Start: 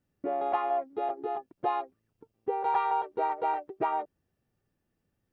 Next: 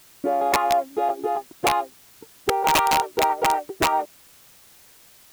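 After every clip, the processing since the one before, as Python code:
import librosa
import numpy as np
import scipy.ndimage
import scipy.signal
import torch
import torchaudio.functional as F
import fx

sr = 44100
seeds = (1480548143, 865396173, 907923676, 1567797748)

y = (np.mod(10.0 ** (20.5 / 20.0) * x + 1.0, 2.0) - 1.0) / 10.0 ** (20.5 / 20.0)
y = fx.quant_dither(y, sr, seeds[0], bits=10, dither='triangular')
y = y * librosa.db_to_amplitude(8.5)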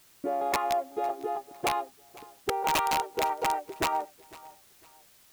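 y = fx.echo_feedback(x, sr, ms=504, feedback_pct=32, wet_db=-21.0)
y = y * librosa.db_to_amplitude(-7.5)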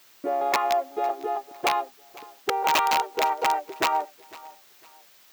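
y = fx.highpass(x, sr, hz=490.0, slope=6)
y = fx.peak_eq(y, sr, hz=10000.0, db=-9.5, octaves=0.72)
y = y * librosa.db_to_amplitude(6.0)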